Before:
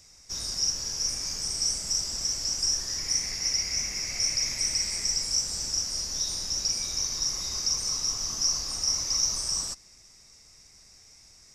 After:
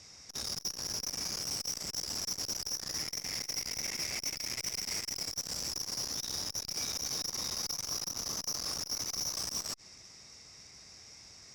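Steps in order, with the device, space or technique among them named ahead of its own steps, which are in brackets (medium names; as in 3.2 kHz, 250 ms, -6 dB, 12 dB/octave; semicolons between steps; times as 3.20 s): valve radio (band-pass 80–5700 Hz; valve stage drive 37 dB, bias 0.6; transformer saturation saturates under 740 Hz); trim +7 dB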